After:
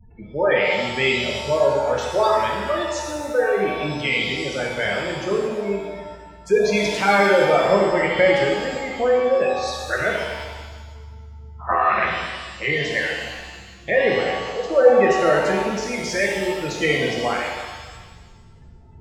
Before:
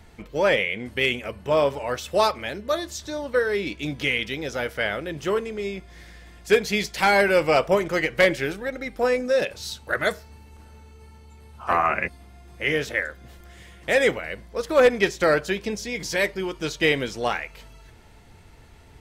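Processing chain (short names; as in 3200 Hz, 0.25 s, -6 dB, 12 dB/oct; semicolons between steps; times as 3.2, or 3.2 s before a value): spectral gate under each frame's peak -15 dB strong; shimmer reverb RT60 1.4 s, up +7 st, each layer -8 dB, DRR -1.5 dB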